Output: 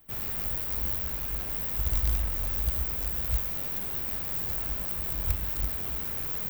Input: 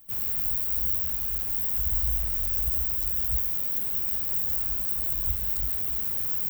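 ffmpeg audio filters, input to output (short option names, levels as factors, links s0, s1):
-filter_complex "[0:a]bass=f=250:g=-2,treble=f=4000:g=-10,asplit=2[s0][s1];[s1]acrusher=bits=5:dc=4:mix=0:aa=0.000001,volume=0.355[s2];[s0][s2]amix=inputs=2:normalize=0,volume=1.5"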